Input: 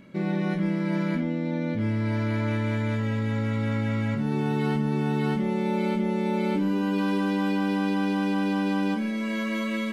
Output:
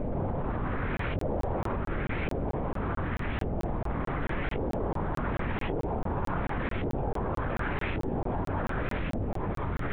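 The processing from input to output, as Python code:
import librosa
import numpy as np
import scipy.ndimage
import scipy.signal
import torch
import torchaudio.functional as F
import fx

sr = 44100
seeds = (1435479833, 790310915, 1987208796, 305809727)

y = np.sign(x) * np.sqrt(np.mean(np.square(x)))
y = fx.filter_lfo_lowpass(y, sr, shape='saw_up', hz=0.88, low_hz=530.0, high_hz=2500.0, q=1.9)
y = fx.lpc_vocoder(y, sr, seeds[0], excitation='whisper', order=10)
y = fx.doubler(y, sr, ms=21.0, db=-12)
y = fx.buffer_crackle(y, sr, first_s=0.97, period_s=0.22, block=1024, kind='zero')
y = F.gain(torch.from_numpy(y), -5.5).numpy()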